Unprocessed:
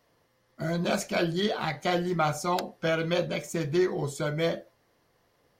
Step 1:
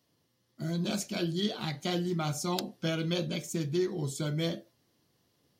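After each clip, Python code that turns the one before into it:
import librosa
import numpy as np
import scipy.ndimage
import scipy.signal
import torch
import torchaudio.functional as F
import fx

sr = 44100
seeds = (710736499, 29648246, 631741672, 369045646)

y = scipy.signal.sosfilt(scipy.signal.butter(2, 89.0, 'highpass', fs=sr, output='sos'), x)
y = fx.band_shelf(y, sr, hz=1000.0, db=-10.0, octaves=2.7)
y = fx.rider(y, sr, range_db=10, speed_s=0.5)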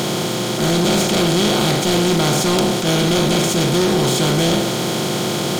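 y = fx.bin_compress(x, sr, power=0.2)
y = fx.leveller(y, sr, passes=3)
y = fx.attack_slew(y, sr, db_per_s=100.0)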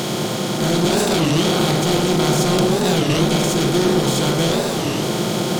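y = fx.echo_bbd(x, sr, ms=104, stages=1024, feedback_pct=78, wet_db=-6.0)
y = fx.record_warp(y, sr, rpm=33.33, depth_cents=250.0)
y = F.gain(torch.from_numpy(y), -2.5).numpy()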